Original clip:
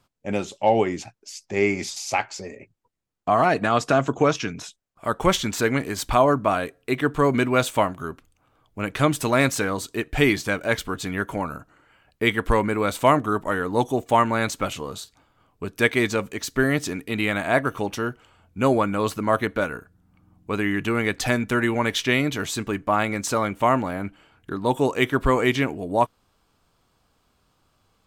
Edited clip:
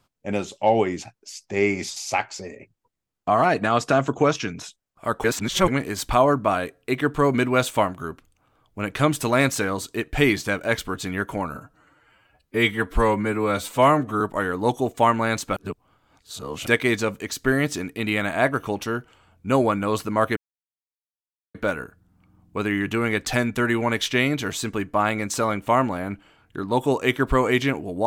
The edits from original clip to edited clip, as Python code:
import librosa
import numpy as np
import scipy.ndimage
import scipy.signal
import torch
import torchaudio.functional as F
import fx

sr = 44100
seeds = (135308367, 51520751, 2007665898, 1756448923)

y = fx.edit(x, sr, fx.reverse_span(start_s=5.24, length_s=0.44),
    fx.stretch_span(start_s=11.55, length_s=1.77, factor=1.5),
    fx.reverse_span(start_s=14.68, length_s=1.1),
    fx.insert_silence(at_s=19.48, length_s=1.18), tone=tone)